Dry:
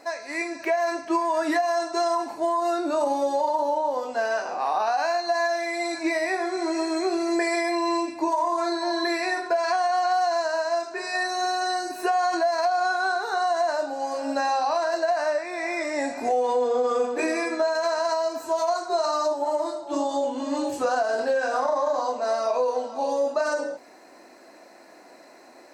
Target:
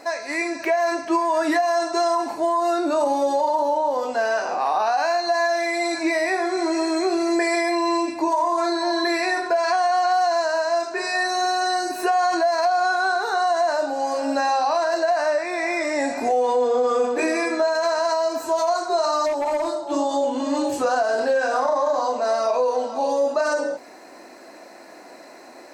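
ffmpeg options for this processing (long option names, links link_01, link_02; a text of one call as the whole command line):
ffmpeg -i in.wav -filter_complex "[0:a]asplit=2[link_01][link_02];[link_02]alimiter=limit=-24dB:level=0:latency=1,volume=0dB[link_03];[link_01][link_03]amix=inputs=2:normalize=0,asplit=3[link_04][link_05][link_06];[link_04]afade=type=out:start_time=19.25:duration=0.02[link_07];[link_05]volume=18.5dB,asoftclip=hard,volume=-18.5dB,afade=type=in:start_time=19.25:duration=0.02,afade=type=out:start_time=19.91:duration=0.02[link_08];[link_06]afade=type=in:start_time=19.91:duration=0.02[link_09];[link_07][link_08][link_09]amix=inputs=3:normalize=0" out.wav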